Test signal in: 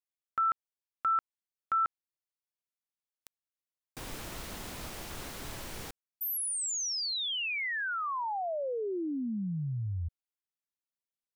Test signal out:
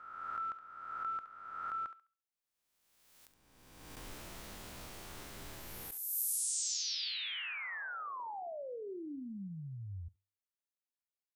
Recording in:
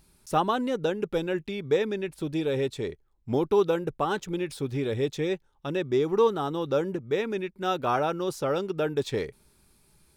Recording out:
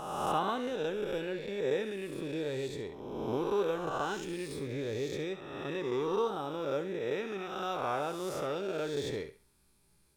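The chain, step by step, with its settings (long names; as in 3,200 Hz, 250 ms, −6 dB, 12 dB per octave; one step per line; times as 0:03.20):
peak hold with a rise ahead of every peak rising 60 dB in 1.54 s
tuned comb filter 98 Hz, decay 0.35 s, harmonics all, mix 30%
on a send: feedback echo with a high-pass in the loop 69 ms, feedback 27%, high-pass 590 Hz, level −10.5 dB
on the sum: level −8 dB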